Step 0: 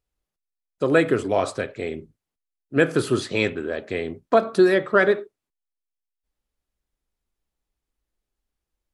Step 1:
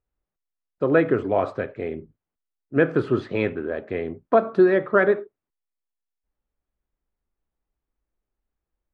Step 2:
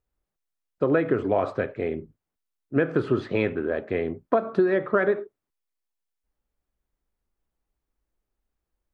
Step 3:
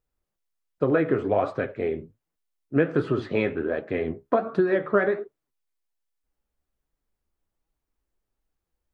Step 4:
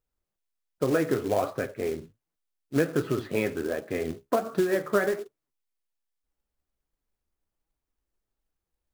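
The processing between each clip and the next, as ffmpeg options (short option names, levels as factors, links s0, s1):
-af "lowpass=1800"
-af "acompressor=threshold=0.112:ratio=6,volume=1.19"
-af "flanger=delay=6:depth=8.9:regen=50:speed=1.3:shape=sinusoidal,volume=1.58"
-af "acrusher=bits=4:mode=log:mix=0:aa=0.000001,volume=0.708"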